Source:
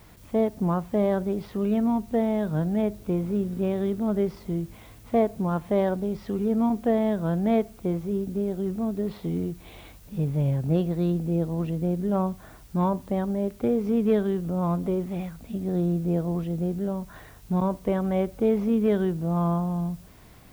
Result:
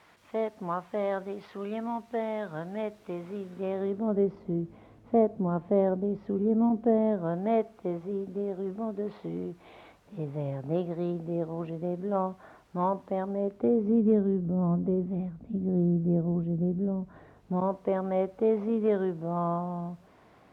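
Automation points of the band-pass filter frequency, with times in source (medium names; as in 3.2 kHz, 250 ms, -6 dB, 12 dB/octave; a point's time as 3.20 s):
band-pass filter, Q 0.63
3.46 s 1.5 kHz
4.28 s 360 Hz
6.97 s 360 Hz
7.43 s 810 Hz
13.23 s 810 Hz
14.12 s 220 Hz
16.97 s 220 Hz
17.75 s 720 Hz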